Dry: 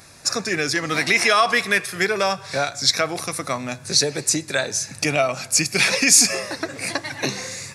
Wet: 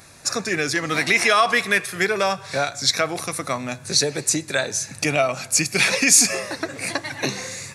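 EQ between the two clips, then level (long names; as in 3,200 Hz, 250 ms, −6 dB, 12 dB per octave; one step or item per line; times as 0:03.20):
parametric band 5,100 Hz −4.5 dB 0.24 octaves
0.0 dB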